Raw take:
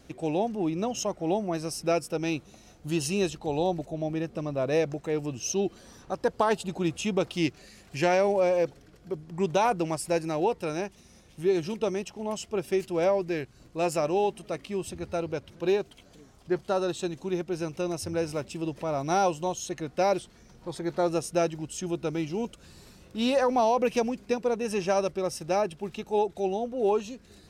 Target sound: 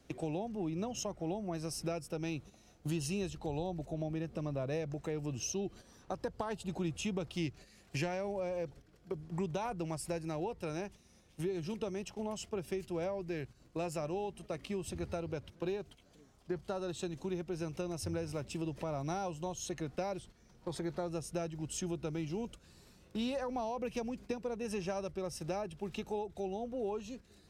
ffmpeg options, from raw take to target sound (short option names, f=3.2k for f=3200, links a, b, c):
-filter_complex "[0:a]agate=range=-10dB:threshold=-43dB:ratio=16:detection=peak,acrossover=split=130[a][b];[b]acompressor=threshold=-38dB:ratio=5[c];[a][c]amix=inputs=2:normalize=0,volume=1dB"